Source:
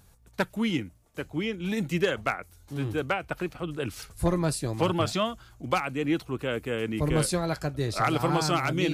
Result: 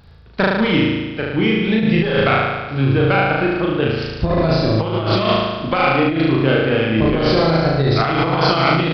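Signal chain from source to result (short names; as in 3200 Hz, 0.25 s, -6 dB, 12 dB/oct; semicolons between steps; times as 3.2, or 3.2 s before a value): added harmonics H 4 -18 dB, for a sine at -7 dBFS; downsampling 11025 Hz; on a send: flutter echo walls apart 6.3 m, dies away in 1.3 s; on the sum: negative-ratio compressor -23 dBFS, ratio -0.5; gain +8.5 dB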